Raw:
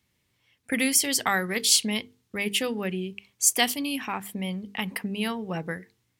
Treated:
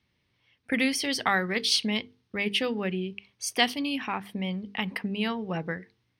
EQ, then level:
Savitzky-Golay smoothing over 15 samples
0.0 dB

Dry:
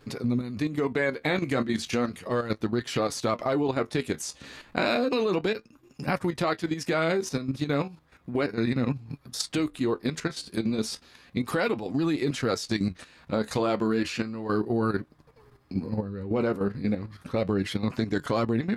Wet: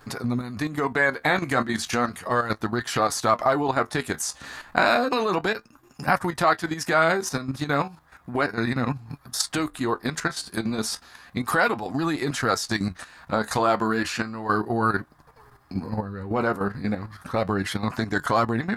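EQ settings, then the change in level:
low-shelf EQ 100 Hz +5.5 dB
flat-topped bell 1,100 Hz +10 dB
high-shelf EQ 5,100 Hz +11.5 dB
−1.0 dB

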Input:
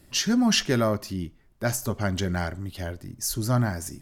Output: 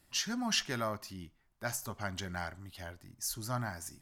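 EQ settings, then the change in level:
low shelf with overshoot 630 Hz −6.5 dB, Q 1.5
−8.0 dB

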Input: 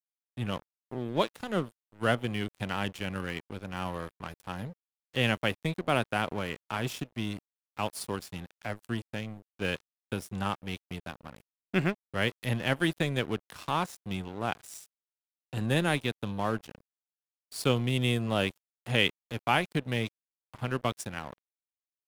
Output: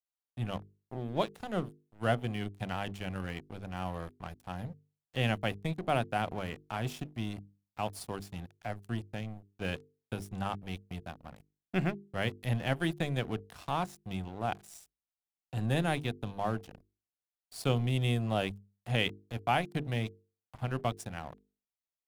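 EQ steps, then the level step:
low-shelf EQ 160 Hz +10 dB
parametric band 720 Hz +7.5 dB 0.37 octaves
mains-hum notches 50/100/150/200/250/300/350/400/450 Hz
−6.0 dB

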